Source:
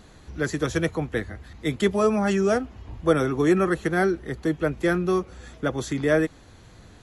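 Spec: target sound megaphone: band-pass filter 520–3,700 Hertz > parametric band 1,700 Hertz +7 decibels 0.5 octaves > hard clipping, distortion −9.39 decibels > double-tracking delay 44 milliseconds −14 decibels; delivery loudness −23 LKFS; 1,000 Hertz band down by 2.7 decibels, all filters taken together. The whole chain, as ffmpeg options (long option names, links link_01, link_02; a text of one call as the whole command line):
ffmpeg -i in.wav -filter_complex "[0:a]highpass=520,lowpass=3700,equalizer=frequency=1000:width_type=o:gain=-5.5,equalizer=frequency=1700:width_type=o:width=0.5:gain=7,asoftclip=type=hard:threshold=-24dB,asplit=2[link_01][link_02];[link_02]adelay=44,volume=-14dB[link_03];[link_01][link_03]amix=inputs=2:normalize=0,volume=8dB" out.wav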